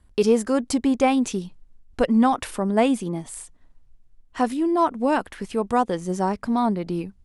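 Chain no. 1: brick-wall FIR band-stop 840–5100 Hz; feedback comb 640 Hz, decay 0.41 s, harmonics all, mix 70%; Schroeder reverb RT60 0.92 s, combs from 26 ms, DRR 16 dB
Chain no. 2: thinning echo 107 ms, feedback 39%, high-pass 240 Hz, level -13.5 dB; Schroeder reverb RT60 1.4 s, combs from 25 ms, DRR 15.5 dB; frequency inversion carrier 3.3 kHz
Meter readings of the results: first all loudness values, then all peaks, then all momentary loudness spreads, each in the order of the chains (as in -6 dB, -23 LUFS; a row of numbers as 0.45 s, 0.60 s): -33.5 LUFS, -19.0 LUFS; -17.5 dBFS, -6.0 dBFS; 10 LU, 10 LU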